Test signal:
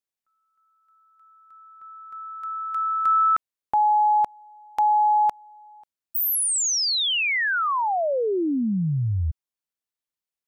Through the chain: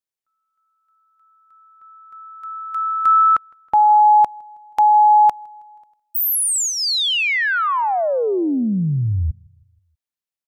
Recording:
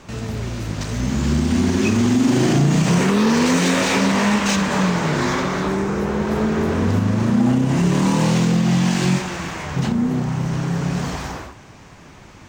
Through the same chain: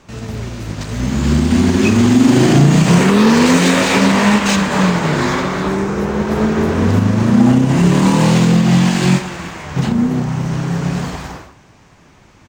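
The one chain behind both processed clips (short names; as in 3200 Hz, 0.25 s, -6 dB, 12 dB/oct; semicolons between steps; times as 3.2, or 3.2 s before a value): dynamic EQ 5800 Hz, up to -4 dB, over -45 dBFS, Q 4.9; on a send: feedback echo 0.16 s, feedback 55%, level -23 dB; on the sum: upward expander 1.5:1, over -35 dBFS; gain +7 dB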